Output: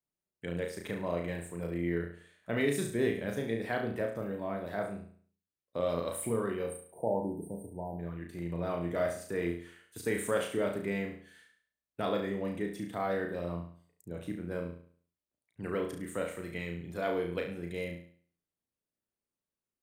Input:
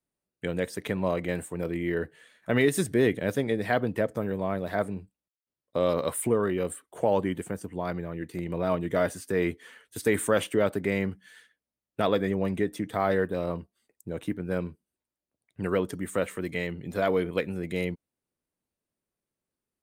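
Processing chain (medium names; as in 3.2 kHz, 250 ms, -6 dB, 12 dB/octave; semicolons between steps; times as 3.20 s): spectral selection erased 6.67–7.99 s, 990–8300 Hz; flutter echo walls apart 6 m, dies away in 0.5 s; trim -8.5 dB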